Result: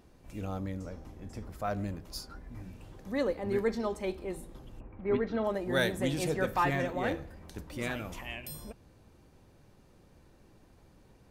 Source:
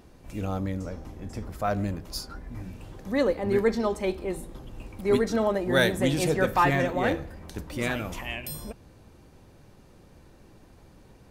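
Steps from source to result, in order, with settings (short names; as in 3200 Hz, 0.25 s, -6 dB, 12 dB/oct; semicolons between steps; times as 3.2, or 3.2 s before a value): 4.79–5.43 LPF 1600 Hz -> 4100 Hz 24 dB/oct; gain -6.5 dB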